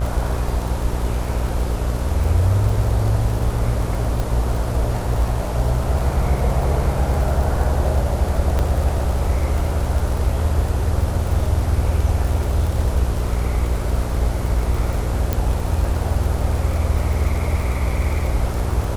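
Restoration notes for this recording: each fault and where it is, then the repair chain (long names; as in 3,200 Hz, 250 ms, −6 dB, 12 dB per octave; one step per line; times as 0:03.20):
mains buzz 60 Hz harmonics 25 −23 dBFS
surface crackle 54 per second −25 dBFS
0:04.20: click
0:08.59: click −9 dBFS
0:15.33: click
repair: click removal
hum removal 60 Hz, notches 25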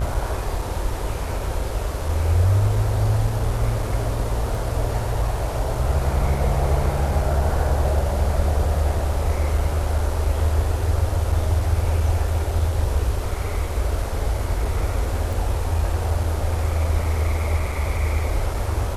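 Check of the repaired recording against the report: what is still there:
0:15.33: click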